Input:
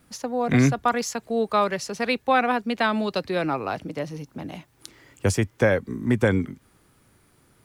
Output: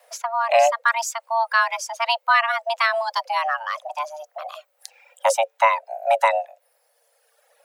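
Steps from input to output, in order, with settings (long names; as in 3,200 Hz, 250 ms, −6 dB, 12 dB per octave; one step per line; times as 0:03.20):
reverb reduction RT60 1.5 s
frequency shifter +450 Hz
level +3 dB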